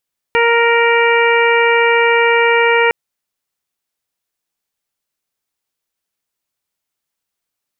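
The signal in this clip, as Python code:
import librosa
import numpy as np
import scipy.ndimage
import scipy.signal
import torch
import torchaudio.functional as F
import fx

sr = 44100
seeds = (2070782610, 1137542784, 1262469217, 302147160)

y = fx.additive_steady(sr, length_s=2.56, hz=467.0, level_db=-13, upper_db=(-3, -6, -4, -3.5, -11.0))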